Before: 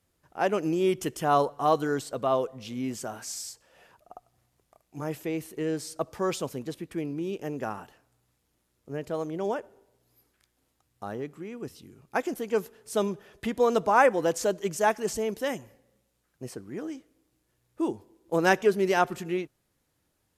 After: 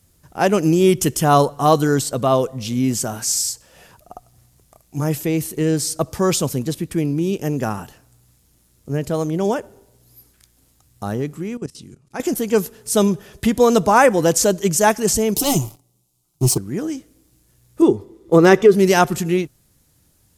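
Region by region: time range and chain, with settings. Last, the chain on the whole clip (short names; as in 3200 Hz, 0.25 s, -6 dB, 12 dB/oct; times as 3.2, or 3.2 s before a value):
11.57–12.2 LPF 9900 Hz 24 dB/oct + bell 67 Hz -7 dB 1 oct + level quantiser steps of 18 dB
15.36–16.58 sample leveller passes 3 + fixed phaser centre 340 Hz, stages 8
17.82–18.75 high shelf 5400 Hz -12 dB + small resonant body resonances 410/1200/2000/3500 Hz, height 10 dB, ringing for 25 ms
whole clip: tone controls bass +10 dB, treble +10 dB; maximiser +9 dB; gain -1 dB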